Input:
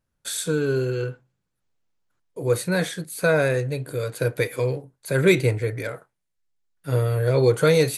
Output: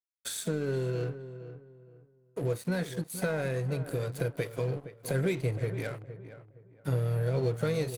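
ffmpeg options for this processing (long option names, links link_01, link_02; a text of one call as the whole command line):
ffmpeg -i in.wav -filter_complex "[0:a]asplit=2[link_01][link_02];[link_02]asetrate=58866,aresample=44100,atempo=0.749154,volume=-17dB[link_03];[link_01][link_03]amix=inputs=2:normalize=0,acompressor=threshold=-34dB:ratio=3,lowshelf=frequency=330:gain=6.5,aeval=exprs='sgn(val(0))*max(abs(val(0))-0.00531,0)':channel_layout=same,asplit=2[link_04][link_05];[link_05]adelay=466,lowpass=frequency=1600:poles=1,volume=-12dB,asplit=2[link_06][link_07];[link_07]adelay=466,lowpass=frequency=1600:poles=1,volume=0.29,asplit=2[link_08][link_09];[link_09]adelay=466,lowpass=frequency=1600:poles=1,volume=0.29[link_10];[link_04][link_06][link_08][link_10]amix=inputs=4:normalize=0" out.wav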